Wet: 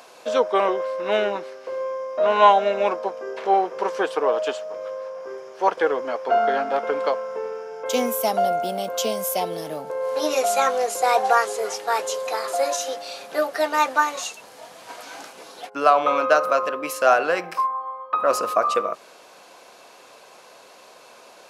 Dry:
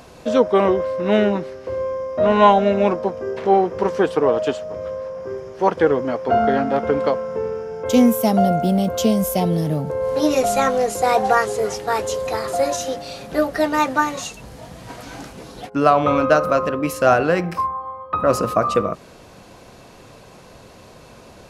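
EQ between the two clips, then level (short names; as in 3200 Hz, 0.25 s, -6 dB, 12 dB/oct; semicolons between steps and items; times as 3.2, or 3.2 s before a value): HPF 570 Hz 12 dB/oct; notch 1900 Hz, Q 22; 0.0 dB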